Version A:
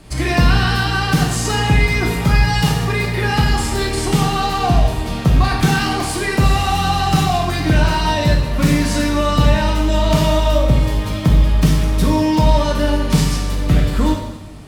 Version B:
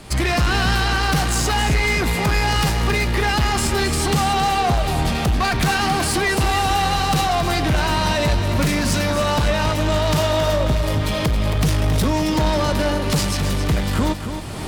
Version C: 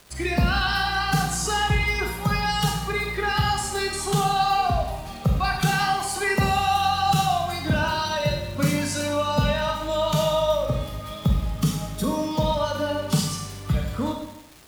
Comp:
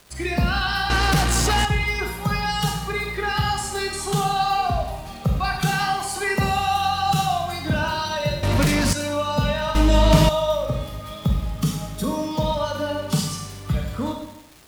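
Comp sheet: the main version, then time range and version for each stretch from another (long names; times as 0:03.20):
C
0:00.90–0:01.65: punch in from B
0:08.43–0:08.93: punch in from B
0:09.75–0:10.29: punch in from A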